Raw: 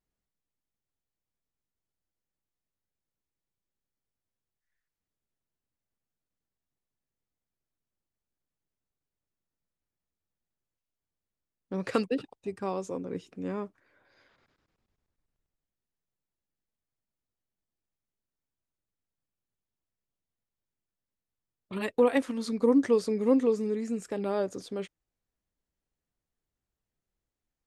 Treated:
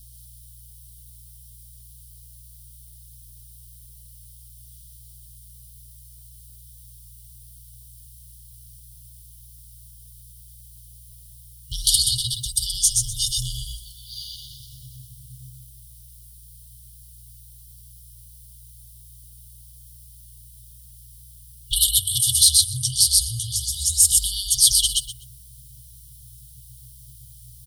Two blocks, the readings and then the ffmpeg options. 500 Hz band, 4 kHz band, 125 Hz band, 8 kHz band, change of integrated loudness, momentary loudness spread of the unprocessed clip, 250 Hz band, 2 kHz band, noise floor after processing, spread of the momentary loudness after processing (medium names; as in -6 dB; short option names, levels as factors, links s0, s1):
under -40 dB, +28.5 dB, +13.0 dB, +35.0 dB, +11.5 dB, 14 LU, under -20 dB, under -30 dB, -47 dBFS, 21 LU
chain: -filter_complex "[0:a]aecho=1:1:125|250|375:0.668|0.12|0.0217,asubboost=boost=10.5:cutoff=52,afreqshift=-150,acompressor=threshold=0.0158:ratio=3,asoftclip=type=tanh:threshold=0.0251,aeval=exprs='val(0)+0.000501*(sin(2*PI*60*n/s)+sin(2*PI*2*60*n/s)/2+sin(2*PI*3*60*n/s)/3+sin(2*PI*4*60*n/s)/4+sin(2*PI*5*60*n/s)/5)':c=same,superequalizer=15b=0.562:16b=1.78,acrossover=split=220|3000[s0][s1][s2];[s0]acompressor=threshold=0.00316:ratio=4[s3];[s3][s1][s2]amix=inputs=3:normalize=0,crystalizer=i=9:c=0,afftfilt=real='re*(1-between(b*sr/4096,130,2900))':imag='im*(1-between(b*sr/4096,130,2900))':win_size=4096:overlap=0.75,aecho=1:1:5.5:0.38,alimiter=level_in=12.6:limit=0.891:release=50:level=0:latency=1,volume=0.841"